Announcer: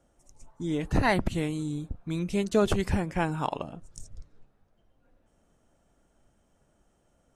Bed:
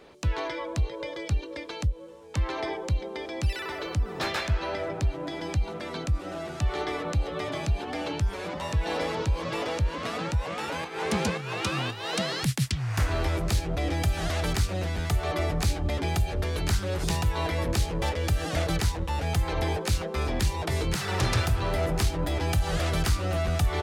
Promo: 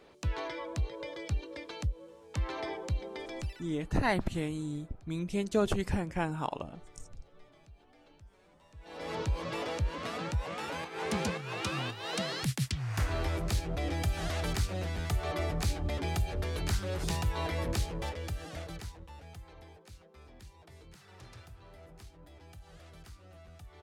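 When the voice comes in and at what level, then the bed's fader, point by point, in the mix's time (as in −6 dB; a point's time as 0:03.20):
3.00 s, −4.5 dB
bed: 0:03.38 −6 dB
0:03.75 −29.5 dB
0:08.71 −29.5 dB
0:09.14 −5.5 dB
0:17.73 −5.5 dB
0:19.74 −26.5 dB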